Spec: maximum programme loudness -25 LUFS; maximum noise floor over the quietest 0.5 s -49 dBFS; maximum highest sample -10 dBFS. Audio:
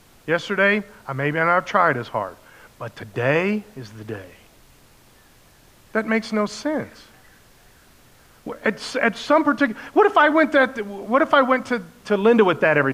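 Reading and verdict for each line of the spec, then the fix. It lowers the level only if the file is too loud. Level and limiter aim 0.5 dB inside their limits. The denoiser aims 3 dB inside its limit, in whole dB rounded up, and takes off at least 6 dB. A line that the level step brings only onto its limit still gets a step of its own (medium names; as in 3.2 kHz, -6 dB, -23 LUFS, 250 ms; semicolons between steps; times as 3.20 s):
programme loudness -20.0 LUFS: fail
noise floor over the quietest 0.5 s -52 dBFS: pass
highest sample -4.5 dBFS: fail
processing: trim -5.5 dB; peak limiter -10.5 dBFS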